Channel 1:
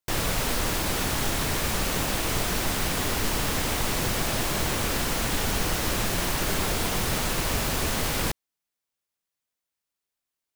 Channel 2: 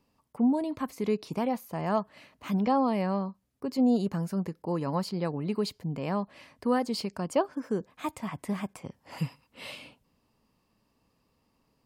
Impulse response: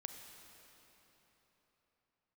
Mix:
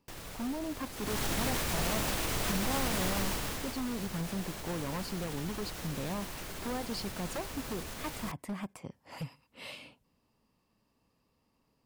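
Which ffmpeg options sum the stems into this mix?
-filter_complex "[0:a]alimiter=limit=-18.5dB:level=0:latency=1:release=65,volume=-4dB,afade=type=in:start_time=0.95:duration=0.29:silence=0.237137,afade=type=out:start_time=3.2:duration=0.56:silence=0.334965[link_01];[1:a]acompressor=threshold=-29dB:ratio=6,aeval=exprs='0.0398*(abs(mod(val(0)/0.0398+3,4)-2)-1)':channel_layout=same,volume=-3dB[link_02];[link_01][link_02]amix=inputs=2:normalize=0"

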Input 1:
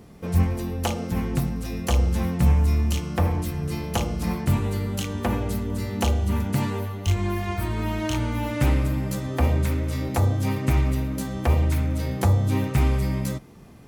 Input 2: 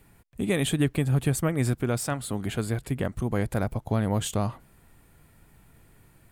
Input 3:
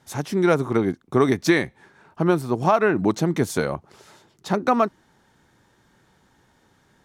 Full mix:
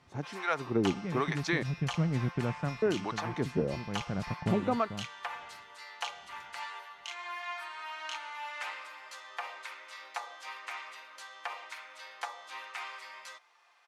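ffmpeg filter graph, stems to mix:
ffmpeg -i stem1.wav -i stem2.wav -i stem3.wav -filter_complex "[0:a]highpass=frequency=900:width=0.5412,highpass=frequency=900:width=1.3066,aecho=1:1:5.7:0.32,volume=-5dB[link_01];[1:a]aeval=exprs='sgn(val(0))*max(abs(val(0))-0.00596,0)':channel_layout=same,lowpass=3000,equalizer=frequency=170:width=2.6:gain=12.5,adelay=550,volume=-7.5dB[link_02];[2:a]acrossover=split=690[link_03][link_04];[link_03]aeval=exprs='val(0)*(1-1/2+1/2*cos(2*PI*1.1*n/s))':channel_layout=same[link_05];[link_04]aeval=exprs='val(0)*(1-1/2-1/2*cos(2*PI*1.1*n/s))':channel_layout=same[link_06];[link_05][link_06]amix=inputs=2:normalize=0,volume=-5dB,asplit=3[link_07][link_08][link_09];[link_07]atrim=end=1.63,asetpts=PTS-STARTPTS,afade=type=out:start_time=1.626:duration=0.004:curve=hsin[link_10];[link_08]atrim=start=1.63:end=2.82,asetpts=PTS-STARTPTS,volume=0[link_11];[link_09]atrim=start=2.82,asetpts=PTS-STARTPTS,afade=type=in:duration=0.004:curve=hsin[link_12];[link_10][link_11][link_12]concat=n=3:v=0:a=1,asplit=2[link_13][link_14];[link_14]apad=whole_len=302928[link_15];[link_02][link_15]sidechaincompress=threshold=-34dB:ratio=8:attack=16:release=950[link_16];[link_01][link_16][link_13]amix=inputs=3:normalize=0,lowpass=4700" out.wav

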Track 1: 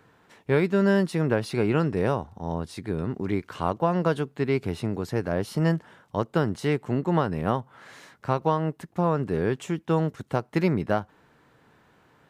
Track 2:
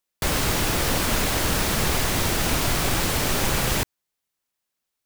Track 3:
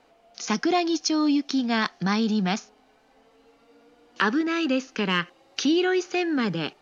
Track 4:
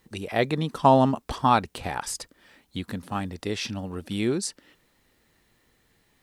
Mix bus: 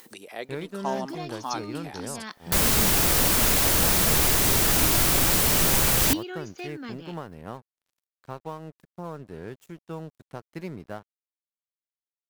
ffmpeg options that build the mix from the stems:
ffmpeg -i stem1.wav -i stem2.wav -i stem3.wav -i stem4.wav -filter_complex "[0:a]aeval=exprs='sgn(val(0))*max(abs(val(0))-0.0106,0)':channel_layout=same,volume=-12.5dB,asplit=2[link_01][link_02];[1:a]adelay=2300,volume=-1.5dB[link_03];[2:a]dynaudnorm=framelen=160:gausssize=5:maxgain=5dB,adelay=450,volume=-9.5dB[link_04];[3:a]highpass=320,acompressor=mode=upward:threshold=-26dB:ratio=2.5,volume=-12dB[link_05];[link_02]apad=whole_len=320200[link_06];[link_04][link_06]sidechaincompress=threshold=-49dB:ratio=3:attack=41:release=412[link_07];[link_01][link_03][link_07][link_05]amix=inputs=4:normalize=0,highshelf=frequency=7400:gain=10.5" out.wav

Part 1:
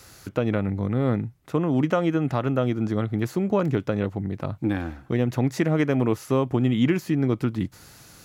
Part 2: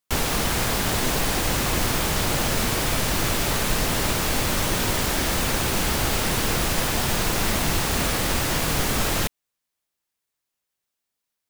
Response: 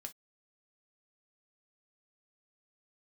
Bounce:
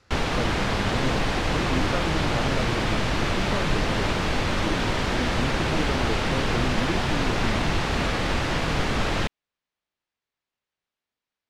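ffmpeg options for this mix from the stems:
-filter_complex "[0:a]volume=-8.5dB[link_01];[1:a]volume=0dB[link_02];[link_01][link_02]amix=inputs=2:normalize=0,lowpass=3700"

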